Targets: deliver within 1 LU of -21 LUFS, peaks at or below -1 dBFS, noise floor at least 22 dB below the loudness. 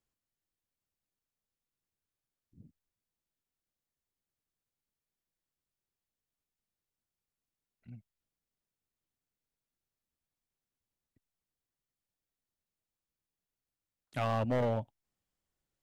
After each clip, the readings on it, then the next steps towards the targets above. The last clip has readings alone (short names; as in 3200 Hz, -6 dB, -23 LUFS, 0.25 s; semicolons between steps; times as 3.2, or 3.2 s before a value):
clipped 0.3%; flat tops at -26.5 dBFS; loudness -33.5 LUFS; peak -26.5 dBFS; loudness target -21.0 LUFS
-> clip repair -26.5 dBFS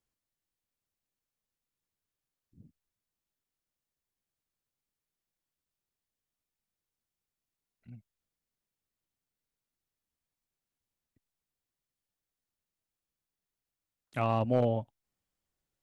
clipped 0.0%; loudness -30.5 LUFS; peak -17.5 dBFS; loudness target -21.0 LUFS
-> gain +9.5 dB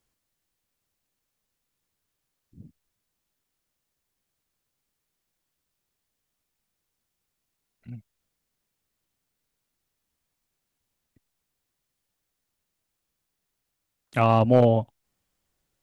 loudness -21.0 LUFS; peak -8.0 dBFS; noise floor -81 dBFS